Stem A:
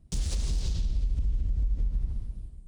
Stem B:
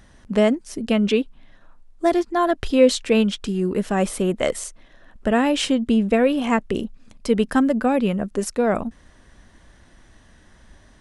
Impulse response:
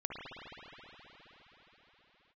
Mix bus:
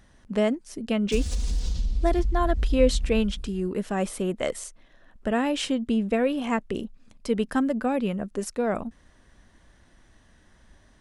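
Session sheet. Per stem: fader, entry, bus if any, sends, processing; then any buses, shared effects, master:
−1.0 dB, 1.00 s, no send, comb filter 4.1 ms, depth 74%
−6.0 dB, 0.00 s, no send, no processing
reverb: not used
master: no processing

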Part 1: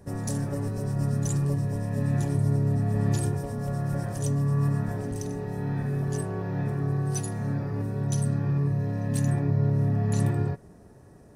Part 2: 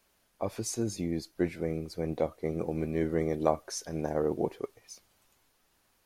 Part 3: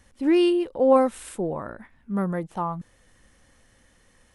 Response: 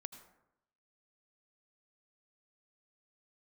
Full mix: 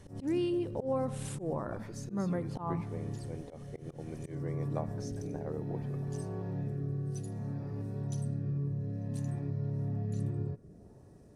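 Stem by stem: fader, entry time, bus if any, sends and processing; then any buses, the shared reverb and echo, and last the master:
−2.0 dB, 0.00 s, bus A, send −16.5 dB, rotating-speaker cabinet horn 0.6 Hz; automatic ducking −14 dB, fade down 1.80 s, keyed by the third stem
−13.5 dB, 1.30 s, no bus, send −6.5 dB, no processing
+1.5 dB, 0.00 s, bus A, send −9.5 dB, downward compressor, threshold −24 dBFS, peak gain reduction 11 dB
bus A: 0.0 dB, parametric band 1,700 Hz −9.5 dB 1.4 octaves; downward compressor 2 to 1, threshold −40 dBFS, peak gain reduction 10 dB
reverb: on, RT60 0.80 s, pre-delay 73 ms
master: high-shelf EQ 7,700 Hz −8.5 dB; volume swells 104 ms

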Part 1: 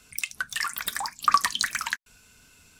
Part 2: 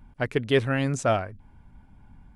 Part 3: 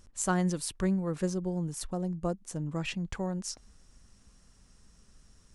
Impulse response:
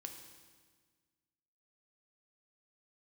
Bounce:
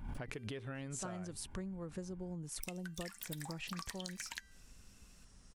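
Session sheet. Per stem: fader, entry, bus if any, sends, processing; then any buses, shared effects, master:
−1.5 dB, 2.45 s, bus A, no send, parametric band 1,200 Hz −14 dB 0.52 octaves; expander for the loud parts 1.5 to 1, over −44 dBFS
+2.0 dB, 0.00 s, bus A, no send, background raised ahead of every attack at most 120 dB per second
−1.0 dB, 0.75 s, no bus, no send, no processing
bus A: 0.0 dB, hum removal 392.6 Hz, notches 39; downward compressor, threshold −29 dBFS, peak gain reduction 14 dB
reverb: not used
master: downward compressor 12 to 1, threshold −40 dBFS, peak gain reduction 18 dB

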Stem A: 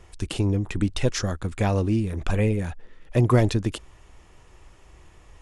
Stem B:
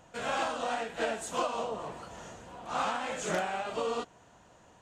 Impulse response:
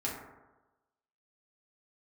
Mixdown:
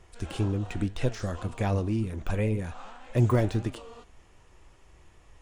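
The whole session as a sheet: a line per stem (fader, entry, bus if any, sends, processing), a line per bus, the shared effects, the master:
−0.5 dB, 0.00 s, no send, flanger 1.9 Hz, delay 7 ms, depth 5.7 ms, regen +79%; de-essing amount 100%
−15.0 dB, 0.00 s, no send, low-pass filter 9,600 Hz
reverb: not used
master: no processing

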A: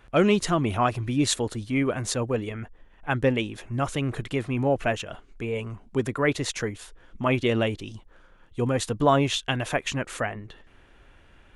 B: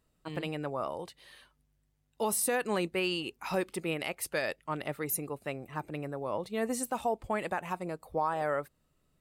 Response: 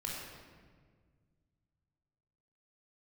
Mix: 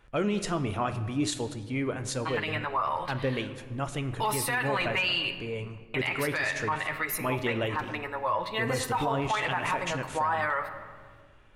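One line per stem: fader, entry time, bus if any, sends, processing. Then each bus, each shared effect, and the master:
−2.0 dB, 0.00 s, send −11.5 dB, flanger 1.3 Hz, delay 5.8 ms, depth 5.3 ms, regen +74%
+3.0 dB, 2.00 s, muted 0:05.38–0:05.94, send −11 dB, octave-band graphic EQ 250/500/1,000/2,000/4,000/8,000 Hz −6/−4/+11/+11/+7/−5 dB; multi-voice chorus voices 6, 0.31 Hz, delay 11 ms, depth 1.8 ms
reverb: on, RT60 1.7 s, pre-delay 20 ms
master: brickwall limiter −19 dBFS, peak gain reduction 11.5 dB

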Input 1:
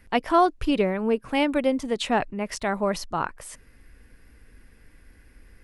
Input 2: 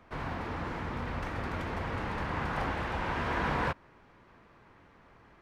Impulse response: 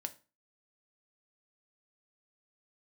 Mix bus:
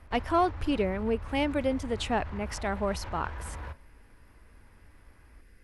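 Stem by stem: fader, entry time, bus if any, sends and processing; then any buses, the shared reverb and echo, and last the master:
−5.0 dB, 0.00 s, no send, no processing
−5.0 dB, 0.00 s, send −4 dB, low shelf with overshoot 110 Hz +13 dB, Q 1.5; brickwall limiter −25.5 dBFS, peak gain reduction 12.5 dB; automatic ducking −9 dB, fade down 0.25 s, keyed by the first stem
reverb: on, RT60 0.35 s, pre-delay 3 ms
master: soft clipping −13.5 dBFS, distortion −26 dB

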